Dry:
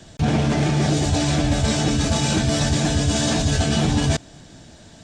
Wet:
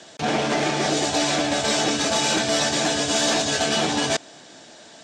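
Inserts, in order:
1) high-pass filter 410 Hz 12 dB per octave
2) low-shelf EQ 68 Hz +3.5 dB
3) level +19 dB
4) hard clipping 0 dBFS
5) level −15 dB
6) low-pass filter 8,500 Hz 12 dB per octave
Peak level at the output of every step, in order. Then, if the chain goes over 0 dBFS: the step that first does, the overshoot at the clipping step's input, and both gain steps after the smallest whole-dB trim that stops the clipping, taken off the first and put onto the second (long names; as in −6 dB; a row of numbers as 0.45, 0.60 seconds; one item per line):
−11.5, −11.5, +7.5, 0.0, −15.0, −14.0 dBFS
step 3, 7.5 dB
step 3 +11 dB, step 5 −7 dB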